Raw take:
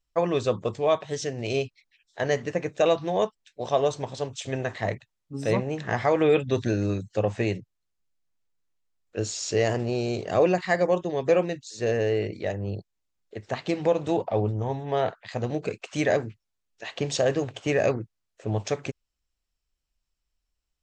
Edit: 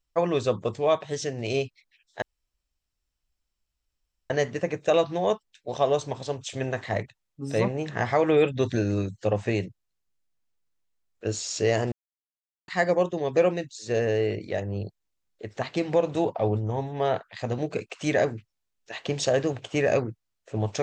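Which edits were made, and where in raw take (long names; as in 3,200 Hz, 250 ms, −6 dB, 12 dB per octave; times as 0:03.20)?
0:02.22: splice in room tone 2.08 s
0:09.84–0:10.60: silence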